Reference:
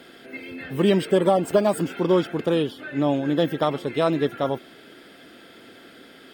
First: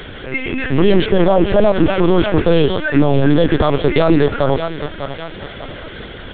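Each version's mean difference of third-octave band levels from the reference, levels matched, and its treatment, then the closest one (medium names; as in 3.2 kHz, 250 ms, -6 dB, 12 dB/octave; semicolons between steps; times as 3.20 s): 8.0 dB: bass shelf 74 Hz +6.5 dB; on a send: thinning echo 597 ms, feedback 48%, high-pass 450 Hz, level -14.5 dB; on the sum: LPC vocoder at 8 kHz pitch kept; loudness maximiser +16.5 dB; trim -1 dB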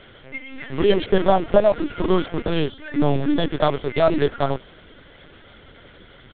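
6.0 dB: in parallel at -8 dB: bit crusher 5-bit; on the sum: peaking EQ 350 Hz -7 dB 0.23 oct; comb 2.9 ms, depth 62%; LPC vocoder at 8 kHz pitch kept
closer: second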